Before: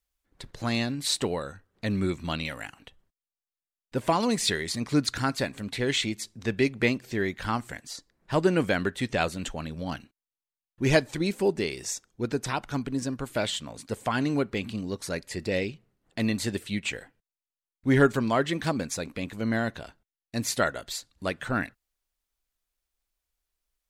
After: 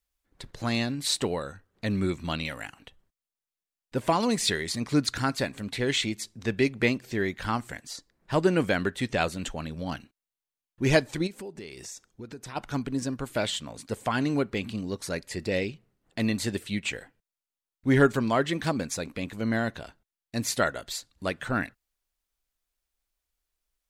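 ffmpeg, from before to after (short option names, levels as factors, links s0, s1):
-filter_complex "[0:a]asplit=3[s0][s1][s2];[s0]afade=t=out:st=11.26:d=0.02[s3];[s1]acompressor=threshold=0.0112:ratio=4:attack=3.2:release=140:knee=1:detection=peak,afade=t=in:st=11.26:d=0.02,afade=t=out:st=12.55:d=0.02[s4];[s2]afade=t=in:st=12.55:d=0.02[s5];[s3][s4][s5]amix=inputs=3:normalize=0"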